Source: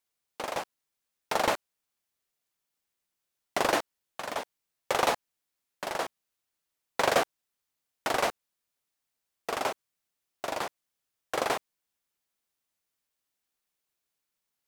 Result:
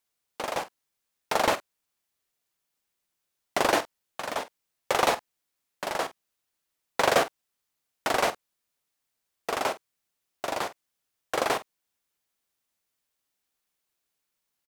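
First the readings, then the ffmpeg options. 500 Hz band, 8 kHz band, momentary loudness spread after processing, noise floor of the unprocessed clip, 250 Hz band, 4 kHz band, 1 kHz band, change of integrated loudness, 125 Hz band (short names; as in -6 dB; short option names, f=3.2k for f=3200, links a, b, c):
+2.5 dB, +2.5 dB, 13 LU, -85 dBFS, +3.0 dB, +2.5 dB, +2.5 dB, +2.5 dB, +2.5 dB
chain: -filter_complex "[0:a]asplit=2[a][b];[b]adelay=47,volume=-14dB[c];[a][c]amix=inputs=2:normalize=0,volume=2.5dB"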